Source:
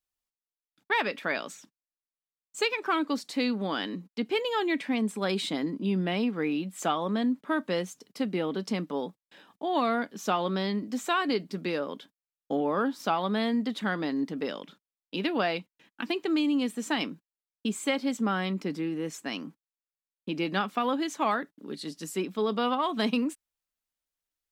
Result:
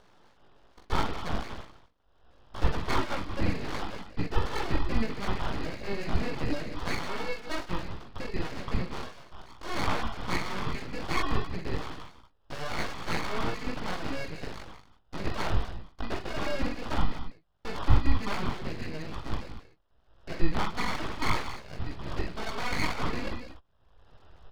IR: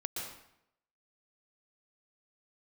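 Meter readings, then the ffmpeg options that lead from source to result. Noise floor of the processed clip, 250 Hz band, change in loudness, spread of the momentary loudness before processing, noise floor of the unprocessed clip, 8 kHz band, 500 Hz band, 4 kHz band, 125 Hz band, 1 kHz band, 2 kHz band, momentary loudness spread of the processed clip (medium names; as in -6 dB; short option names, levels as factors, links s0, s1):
-63 dBFS, -7.5 dB, -4.0 dB, 9 LU, under -85 dBFS, -4.0 dB, -6.5 dB, -3.5 dB, +5.5 dB, -3.5 dB, -2.5 dB, 12 LU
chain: -filter_complex "[0:a]highshelf=f=3500:g=4,aecho=1:1:0.9:0.88,acrusher=samples=20:mix=1:aa=0.000001,acompressor=mode=upward:threshold=0.02:ratio=2.5,asubboost=boost=11.5:cutoff=62,aresample=11025,aresample=44100,aecho=1:1:44|53|155|182|236:0.501|0.119|0.112|0.2|0.2,acrossover=split=2900[s0][s1];[s1]acompressor=threshold=0.00794:ratio=4:attack=1:release=60[s2];[s0][s2]amix=inputs=2:normalize=0,flanger=delay=17:depth=3.4:speed=2.6,aeval=exprs='abs(val(0))':c=same"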